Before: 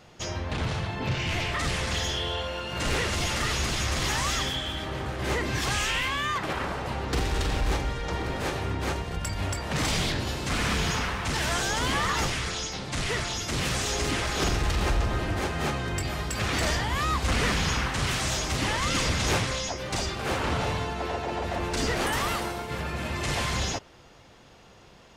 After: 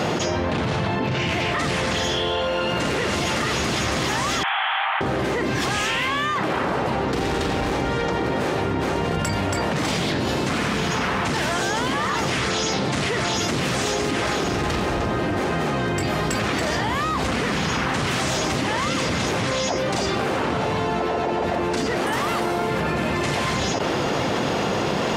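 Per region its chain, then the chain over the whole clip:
0:04.43–0:05.01: linear delta modulator 16 kbit/s, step −30 dBFS + Butterworth high-pass 710 Hz 96 dB per octave + flutter between parallel walls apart 9.1 metres, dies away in 0.24 s
whole clip: high-pass filter 200 Hz 12 dB per octave; spectral tilt −2 dB per octave; envelope flattener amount 100%

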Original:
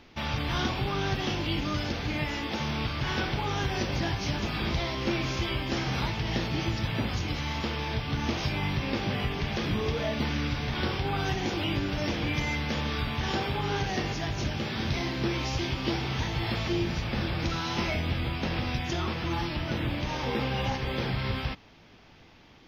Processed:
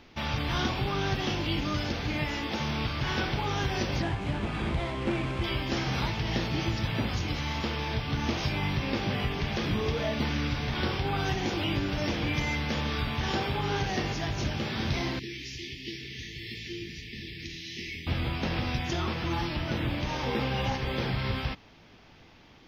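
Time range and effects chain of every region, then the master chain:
0:04.02–0:05.44: running median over 9 samples + high-frequency loss of the air 83 metres
0:15.19–0:18.07: linear-phase brick-wall band-stop 460–1,700 Hz + flanger 1.4 Hz, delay 5.6 ms, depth 9.1 ms, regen −82% + low-shelf EQ 440 Hz −9.5 dB
whole clip: no processing

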